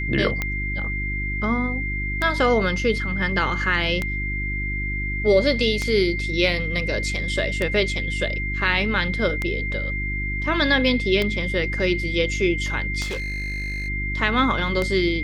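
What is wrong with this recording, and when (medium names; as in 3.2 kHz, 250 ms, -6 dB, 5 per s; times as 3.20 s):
hum 50 Hz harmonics 7 -28 dBFS
tick 33 1/3 rpm -10 dBFS
whine 2.1 kHz -27 dBFS
13.02–13.89 s: clipped -24.5 dBFS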